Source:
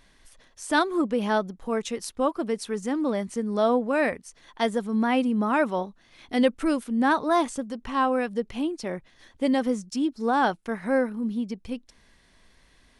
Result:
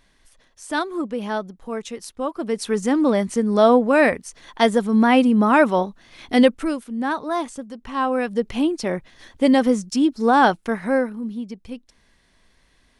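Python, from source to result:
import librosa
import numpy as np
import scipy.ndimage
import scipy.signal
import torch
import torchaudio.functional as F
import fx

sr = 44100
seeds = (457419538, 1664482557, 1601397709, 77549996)

y = fx.gain(x, sr, db=fx.line((2.28, -1.5), (2.71, 8.0), (6.39, 8.0), (6.79, -2.0), (7.77, -2.0), (8.52, 7.5), (10.64, 7.5), (11.3, -1.0)))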